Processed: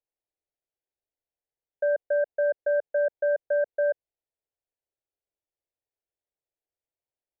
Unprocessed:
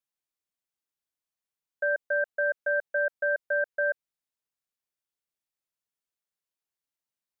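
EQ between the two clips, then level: low-pass 1.3 kHz 12 dB/octave; static phaser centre 500 Hz, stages 4; +6.0 dB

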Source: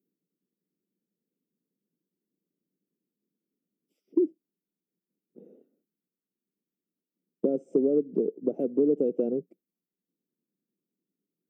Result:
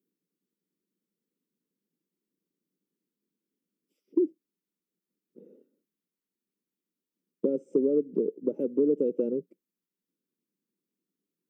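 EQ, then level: Butterworth band-stop 710 Hz, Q 3.1; bass shelf 120 Hz -7.5 dB; 0.0 dB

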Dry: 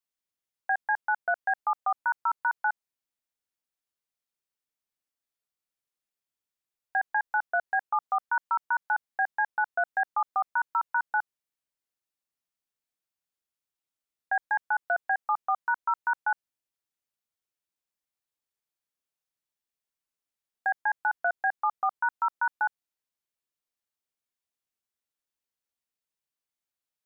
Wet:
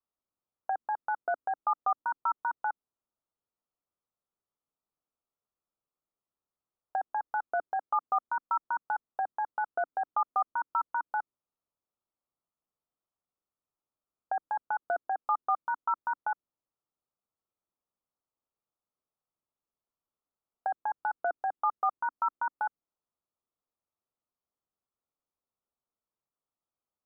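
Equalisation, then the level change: elliptic low-pass 1.3 kHz, stop band 40 dB; dynamic bell 850 Hz, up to -6 dB, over -39 dBFS, Q 0.84; dynamic bell 290 Hz, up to +7 dB, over -60 dBFS, Q 1.8; +4.0 dB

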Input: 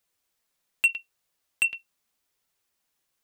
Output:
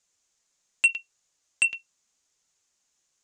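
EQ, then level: resonant low-pass 6.8 kHz, resonance Q 4.7; 0.0 dB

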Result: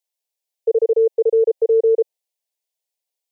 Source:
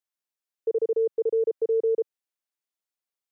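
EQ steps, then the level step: high-pass 390 Hz 24 dB/octave; dynamic bell 680 Hz, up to +5 dB, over -40 dBFS, Q 1; static phaser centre 550 Hz, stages 4; +7.5 dB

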